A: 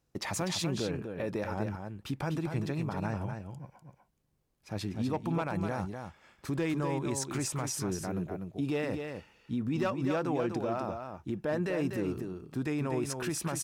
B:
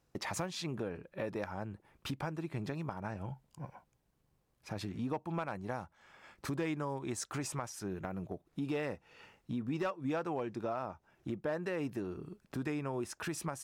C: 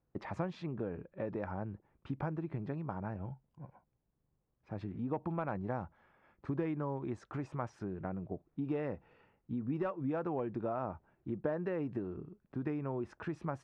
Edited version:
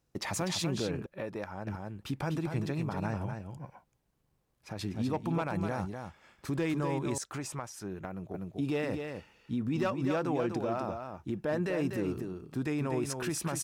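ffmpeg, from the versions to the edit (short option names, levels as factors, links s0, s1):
-filter_complex "[1:a]asplit=3[s0][s1][s2];[0:a]asplit=4[s3][s4][s5][s6];[s3]atrim=end=1.062[s7];[s0]atrim=start=1.058:end=1.672[s8];[s4]atrim=start=1.668:end=3.572[s9];[s1]atrim=start=3.568:end=4.792[s10];[s5]atrim=start=4.788:end=7.182[s11];[s2]atrim=start=7.178:end=8.342[s12];[s6]atrim=start=8.338[s13];[s7][s8]acrossfade=d=0.004:c1=hsin:c2=hsin[s14];[s14][s9]acrossfade=d=0.004:c1=hsin:c2=hsin[s15];[s15][s10]acrossfade=d=0.004:c1=hsin:c2=hsin[s16];[s16][s11]acrossfade=d=0.004:c1=hsin:c2=hsin[s17];[s17][s12]acrossfade=d=0.004:c1=hsin:c2=hsin[s18];[s18][s13]acrossfade=d=0.004:c1=hsin:c2=hsin"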